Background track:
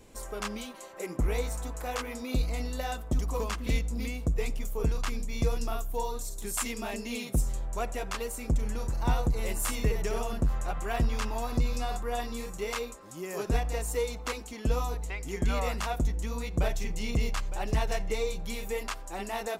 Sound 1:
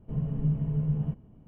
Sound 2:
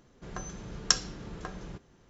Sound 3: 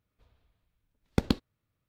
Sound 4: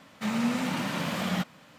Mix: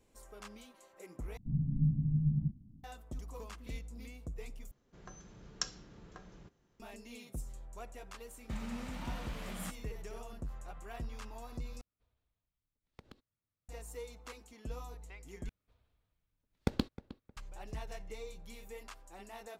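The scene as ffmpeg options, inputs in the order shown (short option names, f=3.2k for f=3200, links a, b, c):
-filter_complex "[3:a]asplit=2[a][b];[0:a]volume=-15dB[c];[1:a]firequalizer=gain_entry='entry(270,0);entry(440,-28);entry(770,-21);entry(1500,-27)':delay=0.05:min_phase=1[d];[a]acompressor=threshold=-37dB:ratio=6:attack=3.2:release=140:knee=1:detection=peak[e];[b]asplit=2[f][g];[g]adelay=311,lowpass=f=2.3k:p=1,volume=-16.5dB,asplit=2[h][i];[i]adelay=311,lowpass=f=2.3k:p=1,volume=0.27,asplit=2[j][k];[k]adelay=311,lowpass=f=2.3k:p=1,volume=0.27[l];[f][h][j][l]amix=inputs=4:normalize=0[m];[c]asplit=5[n][o][p][q][r];[n]atrim=end=1.374[s];[d]atrim=end=1.47,asetpts=PTS-STARTPTS,volume=-3dB[t];[o]atrim=start=2.836:end=4.714[u];[2:a]atrim=end=2.09,asetpts=PTS-STARTPTS,volume=-12.5dB[v];[p]atrim=start=6.796:end=11.814[w];[e]atrim=end=1.88,asetpts=PTS-STARTPTS,volume=-14dB[x];[q]atrim=start=13.686:end=15.494[y];[m]atrim=end=1.88,asetpts=PTS-STARTPTS,volume=-6.5dB[z];[r]atrim=start=17.366[aa];[4:a]atrim=end=1.78,asetpts=PTS-STARTPTS,volume=-15.5dB,afade=t=in:d=0.004:c=hsin,afade=t=out:st=1.776:d=0.004:c=hsin,adelay=8280[ab];[s][t]acrossfade=d=0.004:c1=hsin:c2=hsin[ac];[ac][u]acrossfade=d=0.004:c1=hsin:c2=hsin[ad];[ad][v]acrossfade=d=0.004:c1=hsin:c2=hsin[ae];[ae][w]acrossfade=d=0.004:c1=hsin:c2=hsin[af];[af][x]acrossfade=d=0.004:c1=hsin:c2=hsin[ag];[ag][y]acrossfade=d=0.004:c1=hsin:c2=hsin[ah];[ah][z]acrossfade=d=0.004:c1=hsin:c2=hsin[ai];[ai][aa]acrossfade=d=0.004:c1=hsin:c2=hsin[aj];[aj][ab]amix=inputs=2:normalize=0"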